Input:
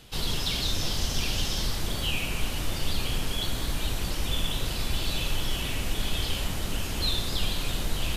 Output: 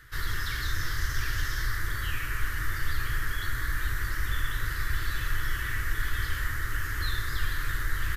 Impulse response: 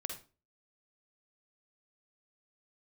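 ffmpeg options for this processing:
-af "firequalizer=gain_entry='entry(120,0);entry(190,-22);entry(310,-7);entry(720,-20);entry(1200,5);entry(1800,14);entry(2500,-12);entry(5900,-7);entry(8900,-8);entry(13000,0)':delay=0.05:min_phase=1"

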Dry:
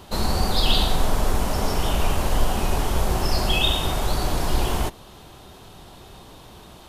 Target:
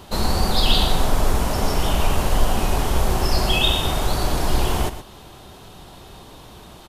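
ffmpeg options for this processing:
-af "aecho=1:1:121:0.251,volume=2dB"

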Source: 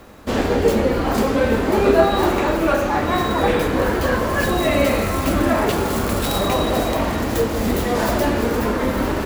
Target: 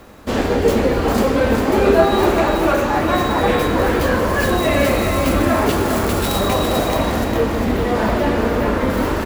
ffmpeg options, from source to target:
-filter_complex "[0:a]asettb=1/sr,asplit=3[a][b][c];[a]atrim=end=7.244[d];[b]atrim=start=7.24:end=8.9,asetpts=PTS-STARTPTS,afade=t=in:d=0.004:c=qsin,afade=t=out:st=1.656:d=0.004:c=qsin,acrossover=split=3800[e][f];[f]acompressor=threshold=-43dB:ratio=4:attack=1:release=60[g];[e][g]amix=inputs=2:normalize=0[h];[c]atrim=start=8.896[i];[d][h]acrossfade=d=0.004:c1=hsin:c2=qsin[j];[j][i]acrossfade=d=0.004:c1=qsin:c2=hsin,aecho=1:1:402:0.501,volume=1dB"

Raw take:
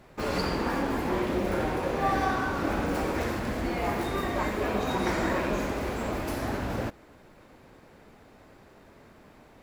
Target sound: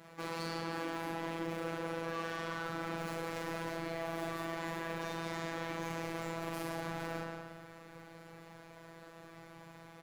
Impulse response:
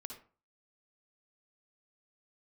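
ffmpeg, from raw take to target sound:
-filter_complex "[0:a]lowshelf=f=370:g=-4,asplit=2[a][b];[1:a]atrim=start_sample=2205,asetrate=38808,aresample=44100[c];[b][c]afir=irnorm=-1:irlink=0,volume=-3dB[d];[a][d]amix=inputs=2:normalize=0,aeval=exprs='(tanh(25.1*val(0)+0.35)-tanh(0.35))/25.1':c=same,asubboost=boost=4:cutoff=110,alimiter=level_in=3.5dB:limit=-24dB:level=0:latency=1:release=13,volume=-3.5dB,highpass=f=83:w=0.5412,highpass=f=83:w=1.3066,asplit=2[e][f];[f]adelay=40,volume=-2.5dB[g];[e][g]amix=inputs=2:normalize=0,asplit=2[h][i];[i]adelay=171,lowpass=f=4.7k:p=1,volume=-5.5dB,asplit=2[j][k];[k]adelay=171,lowpass=f=4.7k:p=1,volume=0.44,asplit=2[l][m];[m]adelay=171,lowpass=f=4.7k:p=1,volume=0.44,asplit=2[n][o];[o]adelay=171,lowpass=f=4.7k:p=1,volume=0.44,asplit=2[p][q];[q]adelay=171,lowpass=f=4.7k:p=1,volume=0.44[r];[h][j][l][n][p][r]amix=inputs=6:normalize=0,afftfilt=real='hypot(re,im)*cos(PI*b)':imag='0':win_size=1024:overlap=0.75,areverse,acompressor=threshold=-33dB:ratio=8,areverse,asetrate=42336,aresample=44100,volume=1dB"

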